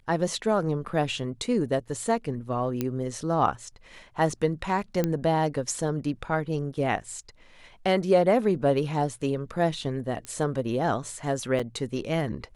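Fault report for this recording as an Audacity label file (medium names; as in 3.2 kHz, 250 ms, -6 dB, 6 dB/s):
2.810000	2.810000	pop -14 dBFS
5.040000	5.040000	pop -12 dBFS
10.250000	10.250000	pop -21 dBFS
11.590000	11.600000	dropout 5.5 ms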